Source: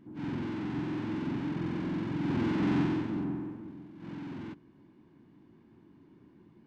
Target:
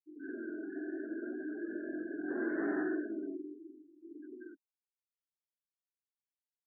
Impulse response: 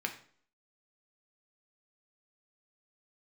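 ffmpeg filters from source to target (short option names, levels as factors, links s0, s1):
-af "highpass=f=320:w=0.5412,highpass=f=320:w=1.3066,equalizer=f=390:t=q:w=4:g=6,equalizer=f=640:t=q:w=4:g=8,equalizer=f=920:t=q:w=4:g=-9,equalizer=f=1600:t=q:w=4:g=10,lowpass=f=2100:w=0.5412,lowpass=f=2100:w=1.3066,afftfilt=real='re*gte(hypot(re,im),0.0251)':imag='im*gte(hypot(re,im),0.0251)':win_size=1024:overlap=0.75,flanger=delay=16:depth=7.8:speed=0.69"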